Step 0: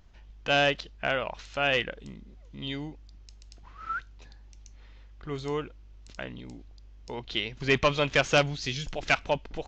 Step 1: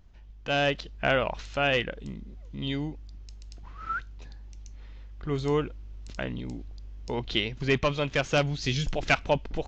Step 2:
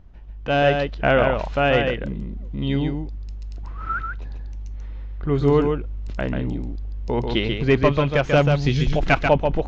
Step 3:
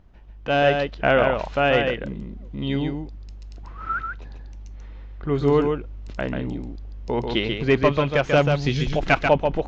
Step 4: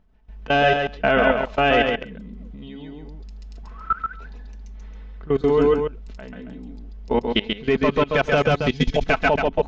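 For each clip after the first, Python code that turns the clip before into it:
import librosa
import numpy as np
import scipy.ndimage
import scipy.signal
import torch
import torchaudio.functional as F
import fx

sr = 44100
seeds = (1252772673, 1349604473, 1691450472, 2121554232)

y1 = fx.low_shelf(x, sr, hz=420.0, db=6.0)
y1 = fx.rider(y1, sr, range_db=10, speed_s=0.5)
y2 = fx.lowpass(y1, sr, hz=1300.0, slope=6)
y2 = y2 + 10.0 ** (-5.0 / 20.0) * np.pad(y2, (int(139 * sr / 1000.0), 0))[:len(y2)]
y2 = y2 * 10.0 ** (8.5 / 20.0)
y3 = fx.low_shelf(y2, sr, hz=140.0, db=-7.0)
y4 = y3 + 0.55 * np.pad(y3, (int(4.6 * sr / 1000.0), 0))[:len(y3)]
y4 = fx.level_steps(y4, sr, step_db=21)
y4 = y4 + 10.0 ** (-5.0 / 20.0) * np.pad(y4, (int(135 * sr / 1000.0), 0))[:len(y4)]
y4 = y4 * 10.0 ** (4.0 / 20.0)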